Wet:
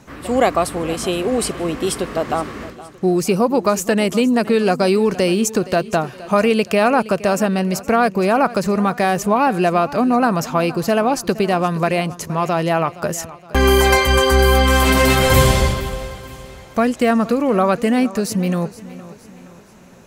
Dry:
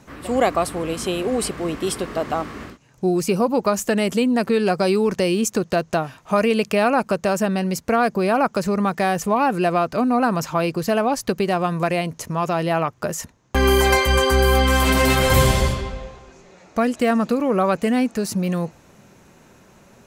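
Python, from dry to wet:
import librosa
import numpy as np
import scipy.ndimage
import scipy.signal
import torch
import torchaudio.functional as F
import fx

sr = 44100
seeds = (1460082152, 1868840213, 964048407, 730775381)

y = fx.echo_feedback(x, sr, ms=468, feedback_pct=46, wet_db=-17.5)
y = F.gain(torch.from_numpy(y), 3.0).numpy()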